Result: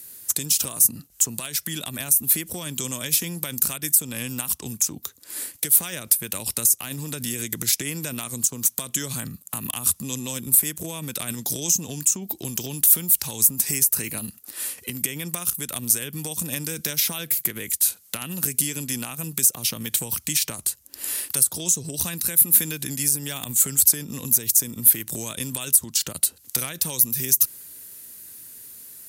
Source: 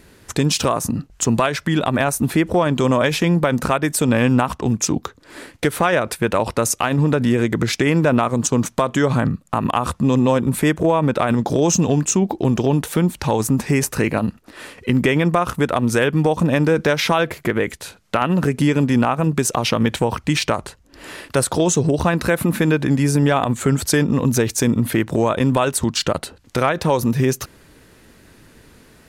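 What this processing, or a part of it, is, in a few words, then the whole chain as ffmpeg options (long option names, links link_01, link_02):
FM broadcast chain: -filter_complex "[0:a]highpass=69,dynaudnorm=framelen=210:gausssize=21:maxgain=11.5dB,acrossover=split=290|2100[link_01][link_02][link_03];[link_01]acompressor=threshold=-19dB:ratio=4[link_04];[link_02]acompressor=threshold=-29dB:ratio=4[link_05];[link_03]acompressor=threshold=-26dB:ratio=4[link_06];[link_04][link_05][link_06]amix=inputs=3:normalize=0,aemphasis=mode=production:type=75fm,alimiter=limit=-5.5dB:level=0:latency=1:release=231,asoftclip=type=hard:threshold=-8.5dB,lowpass=frequency=15000:width=0.5412,lowpass=frequency=15000:width=1.3066,aemphasis=mode=production:type=75fm,volume=-11.5dB"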